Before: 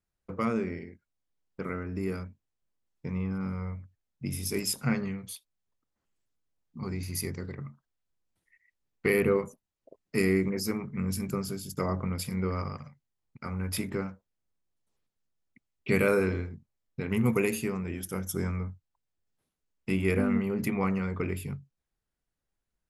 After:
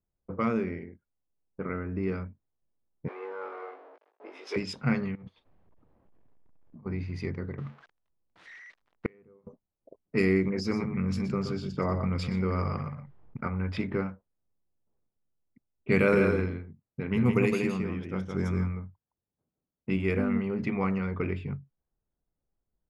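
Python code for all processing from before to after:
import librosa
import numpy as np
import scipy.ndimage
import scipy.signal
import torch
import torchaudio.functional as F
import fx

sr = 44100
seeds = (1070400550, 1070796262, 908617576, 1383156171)

y = fx.chain(x, sr, fx.zero_step(step_db=-37.5),
    fx.steep_highpass(hz=400.0, slope=36),
    fx.doubler(ms=19.0, db=-3.0), at=(3.08, 4.56))
y = fx.chain(y, sr, fx.law_mismatch(coded='mu'),
    fx.peak_eq(hz=1400.0, db=-4.0, octaves=0.26),
    fx.over_compress(threshold_db=-48.0, ratio=-1.0), at=(5.15, 6.86))
y = fx.chain(y, sr, fx.crossing_spikes(level_db=-29.0),
    fx.gate_flip(shuts_db=-19.0, range_db=-36), at=(7.58, 9.47))
y = fx.chain(y, sr, fx.echo_single(ms=122, db=-11.5),
    fx.env_flatten(amount_pct=50), at=(10.58, 13.48))
y = fx.chain(y, sr, fx.highpass(hz=140.0, slope=6),
    fx.bass_treble(bass_db=5, treble_db=1),
    fx.echo_single(ms=165, db=-4.5), at=(15.96, 19.97))
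y = fx.env_lowpass(y, sr, base_hz=800.0, full_db=-22.5)
y = scipy.signal.sosfilt(scipy.signal.butter(2, 4500.0, 'lowpass', fs=sr, output='sos'), y)
y = fx.rider(y, sr, range_db=3, speed_s=2.0)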